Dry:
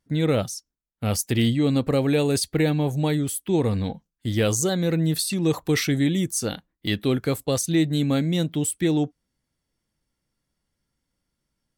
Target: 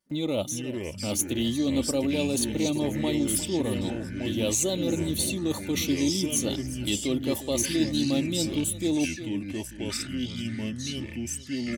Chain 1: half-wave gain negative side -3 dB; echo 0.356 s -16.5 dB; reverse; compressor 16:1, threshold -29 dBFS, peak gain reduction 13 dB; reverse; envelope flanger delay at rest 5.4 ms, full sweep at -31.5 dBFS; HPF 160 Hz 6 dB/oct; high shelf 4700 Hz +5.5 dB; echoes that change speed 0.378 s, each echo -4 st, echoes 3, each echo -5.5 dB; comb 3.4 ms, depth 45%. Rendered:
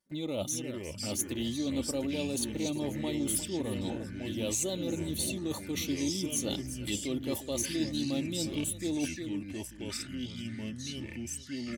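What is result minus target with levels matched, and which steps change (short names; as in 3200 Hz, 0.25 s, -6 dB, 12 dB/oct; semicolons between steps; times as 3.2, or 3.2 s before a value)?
compressor: peak gain reduction +7 dB
change: compressor 16:1, threshold -21.5 dBFS, peak gain reduction 6 dB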